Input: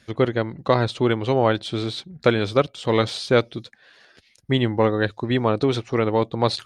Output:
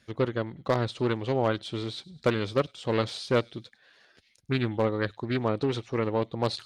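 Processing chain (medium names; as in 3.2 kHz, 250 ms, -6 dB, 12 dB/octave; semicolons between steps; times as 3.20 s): feedback echo behind a high-pass 101 ms, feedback 50%, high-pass 3.8 kHz, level -19 dB; wavefolder -7 dBFS; loudspeaker Doppler distortion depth 0.25 ms; trim -7 dB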